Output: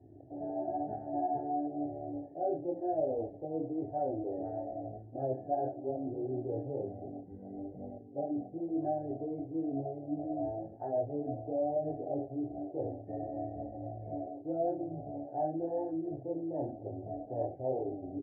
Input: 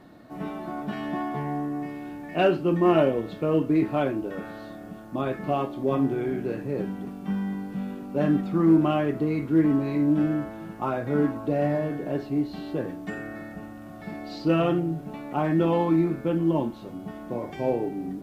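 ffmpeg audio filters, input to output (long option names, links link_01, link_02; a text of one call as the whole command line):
ffmpeg -i in.wav -filter_complex "[0:a]asplit=2[link_01][link_02];[link_02]adelay=38,volume=-11.5dB[link_03];[link_01][link_03]amix=inputs=2:normalize=0,areverse,acompressor=threshold=-33dB:ratio=5,areverse,flanger=delay=19:depth=5.9:speed=1,equalizer=frequency=110:width=1.1:gain=11.5,aecho=1:1:77|154:0.126|0.0327,afwtdn=0.0112,adynamicsmooth=sensitivity=3.5:basefreq=4200,firequalizer=gain_entry='entry(110,0);entry(190,-19);entry(280,1);entry(740,14);entry(1100,-28);entry(1700,-8);entry(2600,-24);entry(4400,-29);entry(6800,-16)':delay=0.05:min_phase=1,volume=-2.5dB" -ar 44100 -c:a libvorbis -b:a 32k out.ogg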